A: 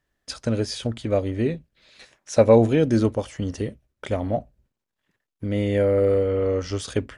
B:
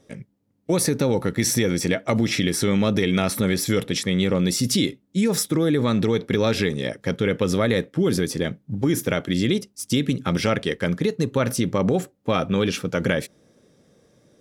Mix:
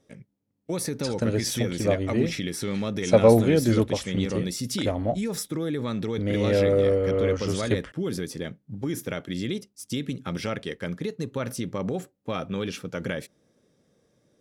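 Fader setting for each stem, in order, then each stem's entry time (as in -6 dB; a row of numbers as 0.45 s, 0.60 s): -1.5 dB, -8.5 dB; 0.75 s, 0.00 s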